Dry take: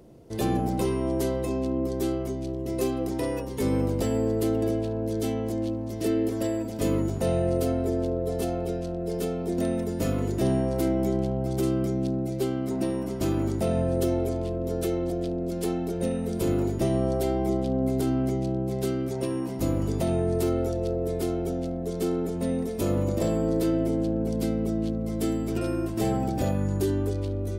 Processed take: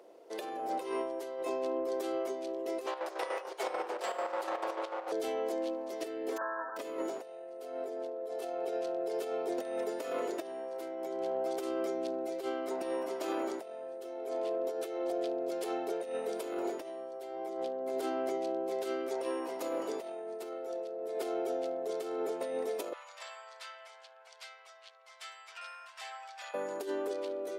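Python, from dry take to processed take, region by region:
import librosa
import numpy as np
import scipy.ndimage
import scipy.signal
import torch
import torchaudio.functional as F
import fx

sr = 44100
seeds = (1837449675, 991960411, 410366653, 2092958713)

y = fx.chain(x, sr, fx.lower_of_two(delay_ms=5.5),
    fx.weighting(curve='A'),
    fx.chopper(hz=6.8, depth_pct=60, duty_pct=55), at=(2.86, 5.12))
y = fx.envelope_flatten(y, sr, power=0.1, at=(6.36, 6.76), fade=0.02)
y = fx.brickwall_bandpass(y, sr, low_hz=160.0, high_hz=1800.0, at=(6.36, 6.76), fade=0.02)
y = fx.chain(y, sr, fx.bessel_highpass(hz=1600.0, order=6),
    fx.air_absorb(metres=76.0), at=(22.93, 26.54))
y = scipy.signal.sosfilt(scipy.signal.butter(4, 450.0, 'highpass', fs=sr, output='sos'), y)
y = fx.high_shelf(y, sr, hz=4600.0, db=-10.0)
y = fx.over_compress(y, sr, threshold_db=-35.0, ratio=-0.5)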